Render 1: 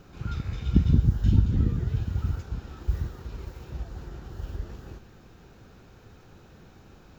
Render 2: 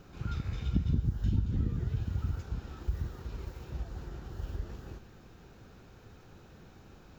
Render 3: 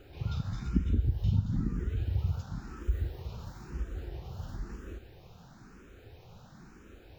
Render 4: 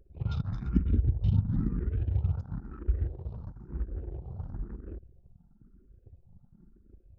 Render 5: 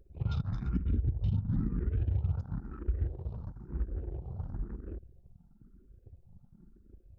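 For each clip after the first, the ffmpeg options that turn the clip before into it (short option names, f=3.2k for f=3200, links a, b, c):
-af "acompressor=threshold=-27dB:ratio=2,volume=-2.5dB"
-filter_complex "[0:a]asplit=2[a][b];[b]afreqshift=1[c];[a][c]amix=inputs=2:normalize=1,volume=4dB"
-af "anlmdn=0.1,volume=2dB"
-af "alimiter=limit=-21.5dB:level=0:latency=1:release=140"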